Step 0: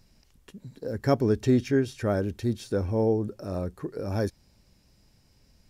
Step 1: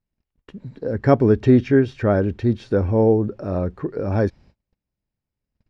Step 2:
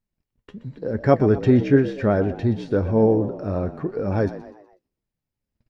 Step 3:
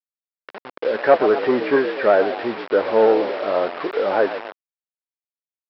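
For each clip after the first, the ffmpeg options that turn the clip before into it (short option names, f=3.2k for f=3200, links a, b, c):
-af "lowpass=2.6k,agate=range=-30dB:threshold=-55dB:ratio=16:detection=peak,volume=8dB"
-filter_complex "[0:a]flanger=delay=4.1:depth=5.8:regen=66:speed=1:shape=triangular,asplit=5[a][b][c][d][e];[b]adelay=123,afreqshift=66,volume=-14.5dB[f];[c]adelay=246,afreqshift=132,volume=-21.6dB[g];[d]adelay=369,afreqshift=198,volume=-28.8dB[h];[e]adelay=492,afreqshift=264,volume=-35.9dB[i];[a][f][g][h][i]amix=inputs=5:normalize=0,volume=3dB"
-filter_complex "[0:a]asplit=2[a][b];[b]highpass=f=720:p=1,volume=18dB,asoftclip=type=tanh:threshold=-1.5dB[c];[a][c]amix=inputs=2:normalize=0,lowpass=f=1.2k:p=1,volume=-6dB,aresample=11025,acrusher=bits=4:mix=0:aa=0.000001,aresample=44100,highpass=510,lowpass=2.3k,volume=3dB"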